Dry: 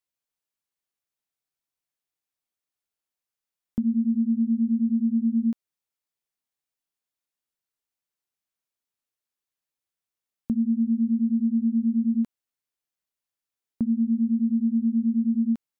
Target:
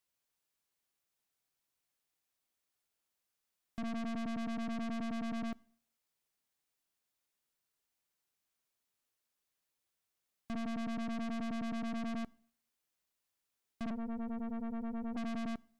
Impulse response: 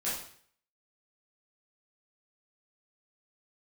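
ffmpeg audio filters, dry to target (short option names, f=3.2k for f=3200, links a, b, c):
-filter_complex "[0:a]asplit=3[a][b][c];[a]afade=t=out:st=13.89:d=0.02[d];[b]highpass=f=330:w=0.5412,highpass=f=330:w=1.3066,afade=t=in:st=13.89:d=0.02,afade=t=out:st=15.16:d=0.02[e];[c]afade=t=in:st=15.16:d=0.02[f];[d][e][f]amix=inputs=3:normalize=0,aeval=exprs='(tanh(158*val(0)+0.6)-tanh(0.6))/158':c=same,asplit=2[g][h];[1:a]atrim=start_sample=2205[i];[h][i]afir=irnorm=-1:irlink=0,volume=-27dB[j];[g][j]amix=inputs=2:normalize=0,volume=6dB"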